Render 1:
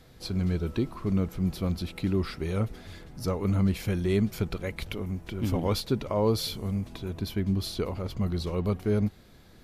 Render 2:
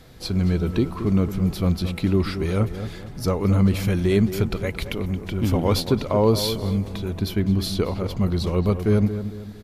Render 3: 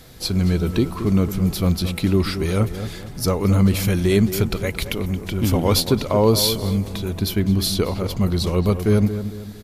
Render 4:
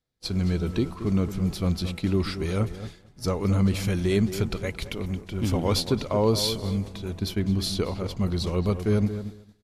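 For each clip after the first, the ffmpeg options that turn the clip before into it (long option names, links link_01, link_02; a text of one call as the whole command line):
ffmpeg -i in.wav -filter_complex "[0:a]asplit=2[link_01][link_02];[link_02]adelay=224,lowpass=frequency=1700:poles=1,volume=-10dB,asplit=2[link_03][link_04];[link_04]adelay=224,lowpass=frequency=1700:poles=1,volume=0.41,asplit=2[link_05][link_06];[link_06]adelay=224,lowpass=frequency=1700:poles=1,volume=0.41,asplit=2[link_07][link_08];[link_08]adelay=224,lowpass=frequency=1700:poles=1,volume=0.41[link_09];[link_01][link_03][link_05][link_07][link_09]amix=inputs=5:normalize=0,volume=6.5dB" out.wav
ffmpeg -i in.wav -af "highshelf=frequency=4700:gain=9.5,volume=2dB" out.wav
ffmpeg -i in.wav -af "lowpass=8900,agate=range=-33dB:threshold=-23dB:ratio=3:detection=peak,volume=-6dB" out.wav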